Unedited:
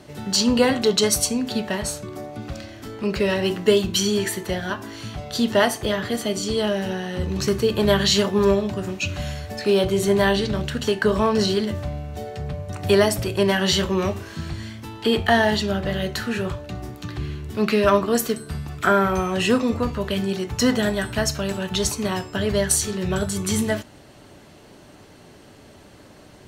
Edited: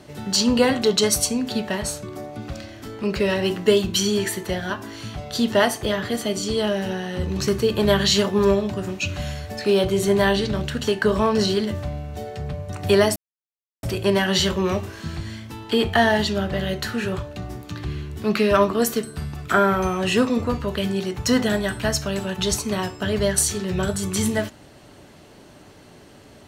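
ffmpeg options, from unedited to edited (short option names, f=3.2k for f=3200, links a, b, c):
-filter_complex "[0:a]asplit=2[a][b];[a]atrim=end=13.16,asetpts=PTS-STARTPTS,afade=t=out:st=13.156:d=0.004:c=hsin,apad=pad_dur=0.67[c];[b]atrim=start=13.16,asetpts=PTS-STARTPTS,afade=t=in:d=0.004:c=hsin[d];[c][d]concat=n=2:v=0:a=1"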